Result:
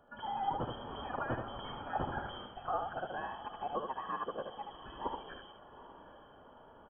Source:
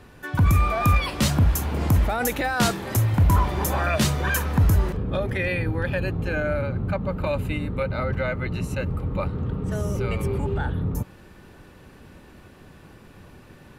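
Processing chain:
phase-vocoder stretch with locked phases 0.5×
inverse Chebyshev high-pass filter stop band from 1,200 Hz, stop band 40 dB
voice inversion scrambler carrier 3,200 Hz
single-tap delay 76 ms −5.5 dB
speech leveller within 3 dB 0.5 s
feedback delay with all-pass diffusion 806 ms, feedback 51%, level −15 dB
level +4 dB

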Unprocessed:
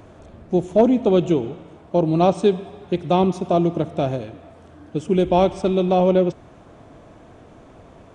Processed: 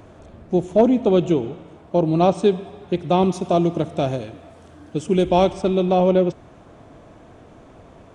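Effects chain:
0:03.22–0:05.53: high-shelf EQ 4,000 Hz +7.5 dB

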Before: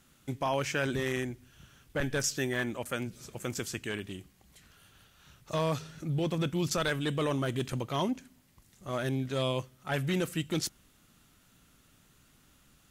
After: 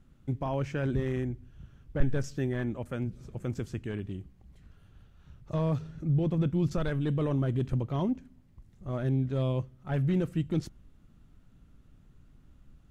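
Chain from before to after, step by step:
spectral tilt −4 dB per octave
level −5.5 dB

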